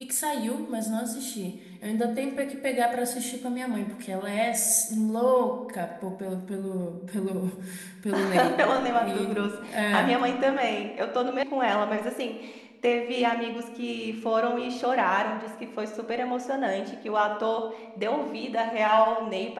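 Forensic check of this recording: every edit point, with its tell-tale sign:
0:11.43: cut off before it has died away

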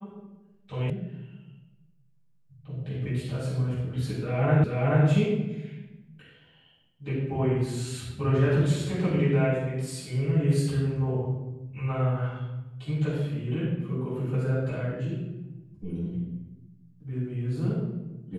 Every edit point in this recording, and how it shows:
0:00.90: cut off before it has died away
0:04.64: the same again, the last 0.43 s

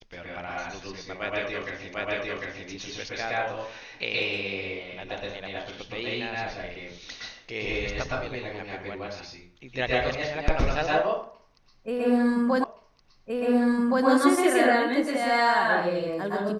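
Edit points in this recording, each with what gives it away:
0:01.94: the same again, the last 0.75 s
0:12.64: the same again, the last 1.42 s

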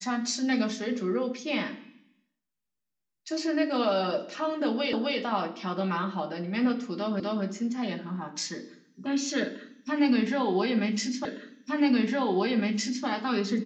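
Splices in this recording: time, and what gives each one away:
0:04.93: the same again, the last 0.26 s
0:07.20: the same again, the last 0.25 s
0:11.25: the same again, the last 1.81 s

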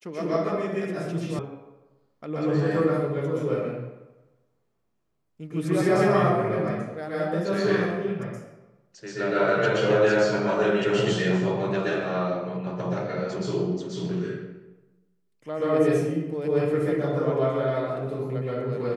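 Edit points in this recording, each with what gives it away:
0:01.39: cut off before it has died away

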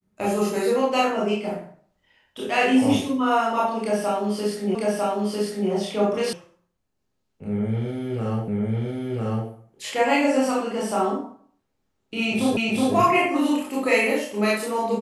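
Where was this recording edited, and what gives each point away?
0:04.75: the same again, the last 0.95 s
0:06.33: cut off before it has died away
0:08.48: the same again, the last 1 s
0:12.57: the same again, the last 0.37 s

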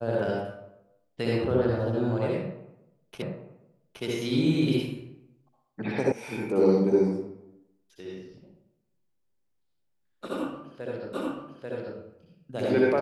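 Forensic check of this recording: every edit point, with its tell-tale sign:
0:03.22: the same again, the last 0.82 s
0:06.12: cut off before it has died away
0:11.13: the same again, the last 0.84 s

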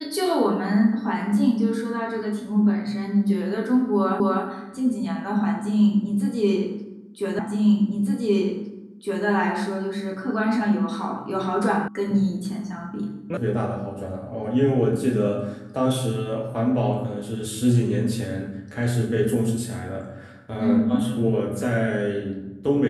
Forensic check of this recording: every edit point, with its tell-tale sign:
0:04.20: the same again, the last 0.25 s
0:07.39: the same again, the last 1.86 s
0:11.88: cut off before it has died away
0:13.37: cut off before it has died away

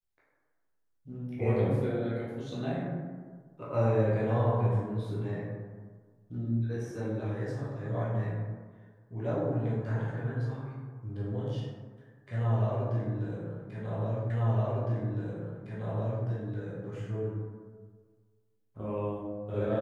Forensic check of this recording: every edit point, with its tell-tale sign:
0:14.30: the same again, the last 1.96 s

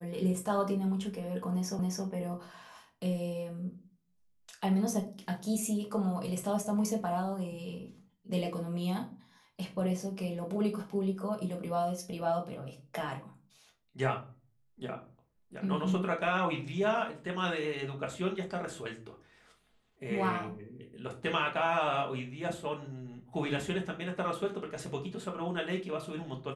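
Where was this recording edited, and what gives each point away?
0:01.79: the same again, the last 0.27 s

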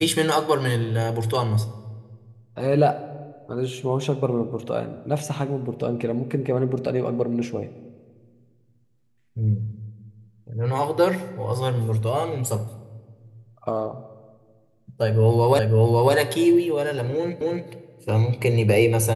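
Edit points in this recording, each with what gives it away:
0:15.59: the same again, the last 0.55 s
0:17.41: the same again, the last 0.27 s

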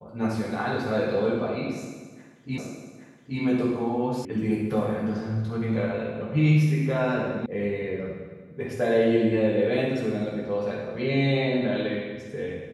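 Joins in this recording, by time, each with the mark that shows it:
0:02.58: the same again, the last 0.82 s
0:04.25: cut off before it has died away
0:07.46: cut off before it has died away

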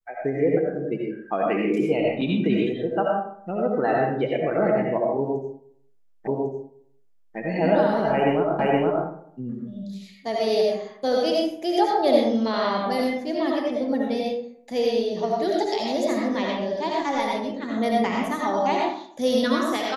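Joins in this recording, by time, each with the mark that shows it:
0:06.27: the same again, the last 1.1 s
0:08.59: the same again, the last 0.47 s

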